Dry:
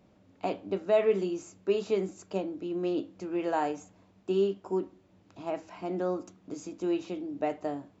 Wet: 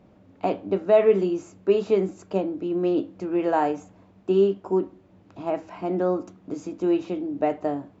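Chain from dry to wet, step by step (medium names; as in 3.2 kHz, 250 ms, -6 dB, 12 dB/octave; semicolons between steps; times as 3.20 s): treble shelf 3.1 kHz -11 dB; trim +7.5 dB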